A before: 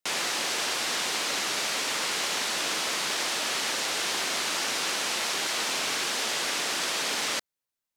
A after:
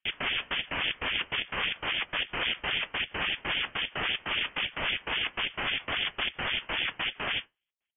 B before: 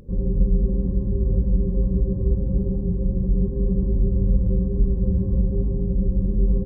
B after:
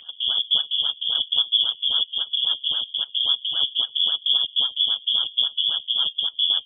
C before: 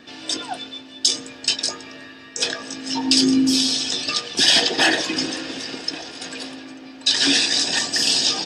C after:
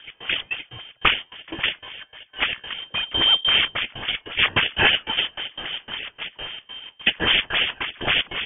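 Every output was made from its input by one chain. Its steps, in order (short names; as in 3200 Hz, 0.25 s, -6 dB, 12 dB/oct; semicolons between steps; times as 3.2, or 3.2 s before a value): step gate "x.xx.x.x" 148 bpm -24 dB; flange 0.97 Hz, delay 7.1 ms, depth 9.2 ms, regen +64%; in parallel at +0.5 dB: vocal rider within 3 dB 2 s; on the sum: decimation with a swept rate 11×, swing 160% 3.7 Hz; HPF 50 Hz; inverted band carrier 3400 Hz; gain -2 dB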